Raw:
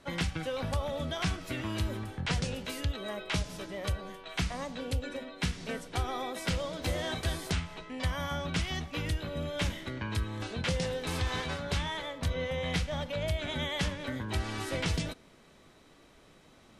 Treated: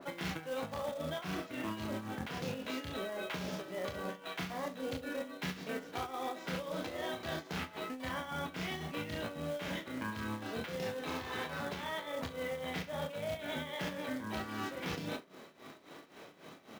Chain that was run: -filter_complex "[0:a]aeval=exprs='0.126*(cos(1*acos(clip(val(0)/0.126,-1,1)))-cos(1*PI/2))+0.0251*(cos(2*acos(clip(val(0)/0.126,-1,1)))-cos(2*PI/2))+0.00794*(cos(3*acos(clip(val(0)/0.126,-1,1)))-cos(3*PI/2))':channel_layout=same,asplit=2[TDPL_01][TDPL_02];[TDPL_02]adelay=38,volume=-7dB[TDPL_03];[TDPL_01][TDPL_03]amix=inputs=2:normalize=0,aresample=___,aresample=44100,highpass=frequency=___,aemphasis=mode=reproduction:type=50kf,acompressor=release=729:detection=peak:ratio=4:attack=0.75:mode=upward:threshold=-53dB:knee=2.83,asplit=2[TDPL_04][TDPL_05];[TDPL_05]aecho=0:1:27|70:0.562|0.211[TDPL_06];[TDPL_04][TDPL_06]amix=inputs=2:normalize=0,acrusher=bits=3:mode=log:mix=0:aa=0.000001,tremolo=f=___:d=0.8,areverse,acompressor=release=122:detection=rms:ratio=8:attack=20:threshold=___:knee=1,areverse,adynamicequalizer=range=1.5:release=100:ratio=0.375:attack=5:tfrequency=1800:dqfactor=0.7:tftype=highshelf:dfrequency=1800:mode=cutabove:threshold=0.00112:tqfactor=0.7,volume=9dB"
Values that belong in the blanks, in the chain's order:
16000, 210, 3.7, -45dB